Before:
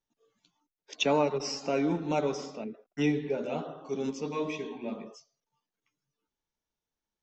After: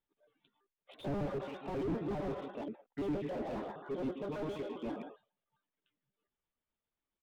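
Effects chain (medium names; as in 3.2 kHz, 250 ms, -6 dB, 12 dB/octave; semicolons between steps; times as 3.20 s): pitch shift switched off and on +5 st, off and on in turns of 67 ms; resampled via 8 kHz; slew-rate limiter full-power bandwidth 9.2 Hz; trim -1.5 dB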